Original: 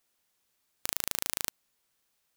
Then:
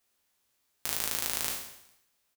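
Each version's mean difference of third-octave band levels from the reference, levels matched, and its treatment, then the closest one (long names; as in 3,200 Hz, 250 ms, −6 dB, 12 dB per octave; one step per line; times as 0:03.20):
1.5 dB: peak hold with a decay on every bin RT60 0.72 s
notch comb filter 160 Hz
on a send: repeating echo 204 ms, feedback 32%, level −23 dB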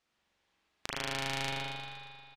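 8.0 dB: low-pass filter 4,500 Hz 12 dB per octave
repeating echo 118 ms, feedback 54%, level −6.5 dB
spring reverb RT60 2.2 s, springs 44 ms, chirp 40 ms, DRR −4 dB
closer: first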